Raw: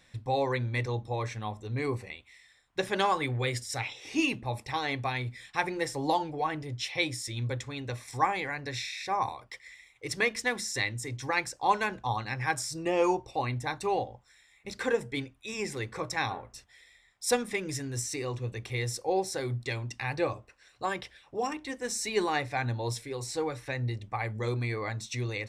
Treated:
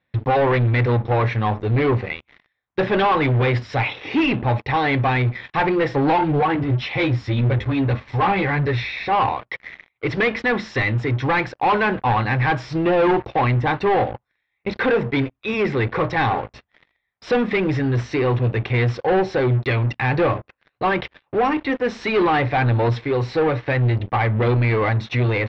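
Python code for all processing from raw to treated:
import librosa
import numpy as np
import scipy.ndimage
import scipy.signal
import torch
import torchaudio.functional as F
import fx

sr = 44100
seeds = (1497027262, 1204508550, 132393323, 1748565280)

y = fx.chain(x, sr, fx.low_shelf(hz=180.0, db=12.0),
    fx.ensemble(), at=(6.21, 9.13))
y = scipy.signal.sosfilt(scipy.signal.butter(2, 60.0, 'highpass', fs=sr, output='sos'), y)
y = fx.leveller(y, sr, passes=5)
y = scipy.signal.sosfilt(scipy.signal.bessel(6, 2300.0, 'lowpass', norm='mag', fs=sr, output='sos'), y)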